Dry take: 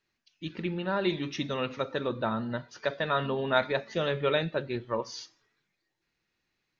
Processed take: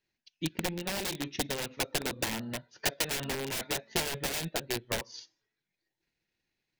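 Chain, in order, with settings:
wrap-around overflow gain 25 dB
parametric band 1,200 Hz −9.5 dB 0.41 octaves
transient designer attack +10 dB, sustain −6 dB
level −4 dB

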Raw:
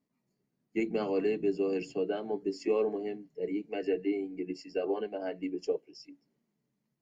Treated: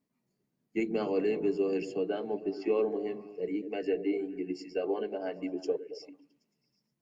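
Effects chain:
0:02.41–0:02.81: low-pass filter 3,800 Hz → 5,600 Hz 24 dB per octave
on a send: echo through a band-pass that steps 111 ms, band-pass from 300 Hz, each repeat 0.7 octaves, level −9.5 dB

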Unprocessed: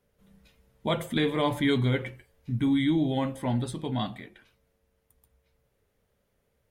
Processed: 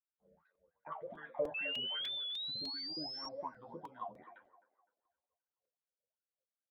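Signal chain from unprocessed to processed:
time-frequency cells dropped at random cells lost 23%
downward expander −56 dBFS
low-shelf EQ 280 Hz +10 dB
hum removal 238.5 Hz, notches 6
downward compressor 6 to 1, threshold −32 dBFS, peak gain reduction 15.5 dB
LFO wah 2.6 Hz 500–1,600 Hz, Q 16
flanger 1.8 Hz, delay 10 ms, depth 4.1 ms, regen +23%
sound drawn into the spectrogram rise, 0:01.54–0:03.29, 2,600–5,600 Hz −53 dBFS
high-frequency loss of the air 180 metres
on a send: delay with a band-pass on its return 259 ms, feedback 33%, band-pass 770 Hz, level −14 dB
on the sum: regular buffer underruns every 0.30 s, samples 128, repeat, from 0:00.55
wow of a warped record 45 rpm, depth 100 cents
level +17 dB

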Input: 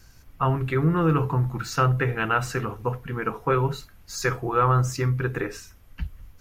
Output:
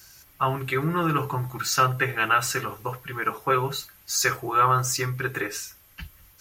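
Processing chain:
spectral tilt +3 dB per octave
notch comb filter 240 Hz
level +2.5 dB

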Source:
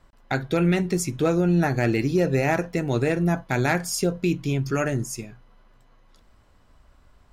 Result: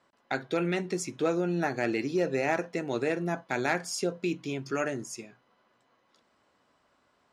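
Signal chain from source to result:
band-pass filter 260–7,800 Hz
level −4.5 dB

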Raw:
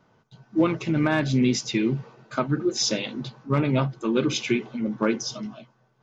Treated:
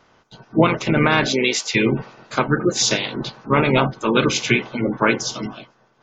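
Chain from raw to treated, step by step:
ceiling on every frequency bin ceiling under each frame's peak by 15 dB
0:01.25–0:01.74: high-pass filter 240 Hz → 800 Hz 12 dB per octave
gate on every frequency bin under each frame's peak −30 dB strong
level +6 dB

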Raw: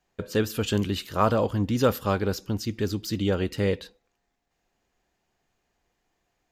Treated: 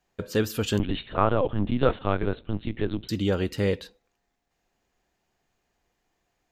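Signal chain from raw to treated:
0:00.79–0:03.09: linear-prediction vocoder at 8 kHz pitch kept

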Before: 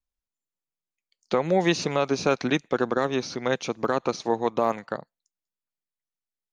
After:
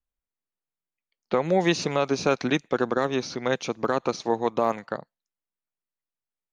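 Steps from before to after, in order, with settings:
low-pass that shuts in the quiet parts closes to 2,200 Hz, open at −22.5 dBFS

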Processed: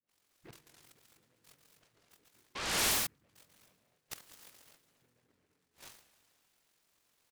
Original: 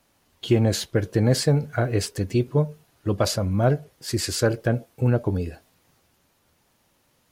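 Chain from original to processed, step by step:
gain on one half-wave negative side −3 dB
downward compressor 6 to 1, threshold −34 dBFS, peak gain reduction 18 dB
amplitude modulation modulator 45 Hz, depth 75%
noise gate −60 dBFS, range −20 dB
all-pass dispersion highs, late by 96 ms, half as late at 720 Hz
on a send: loudspeakers that aren't time-aligned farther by 48 metres −6 dB, 73 metres −7 dB, 86 metres −7 dB
on the sum: gate with flip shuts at −37 dBFS, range −35 dB
high-shelf EQ 3,200 Hz +12 dB
feedback delay network reverb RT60 2.4 s, high-frequency decay 0.8×, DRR 11.5 dB
sound drawn into the spectrogram rise, 0:02.55–0:03.07, 1,000–6,900 Hz −42 dBFS
meter weighting curve D
short delay modulated by noise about 1,400 Hz, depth 0.2 ms
level +1.5 dB

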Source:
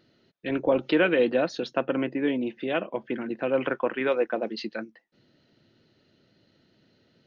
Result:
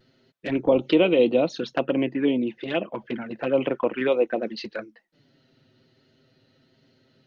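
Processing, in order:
pitch vibrato 1.2 Hz 30 cents
flanger swept by the level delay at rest 8 ms, full sweep at −22 dBFS
level +4.5 dB

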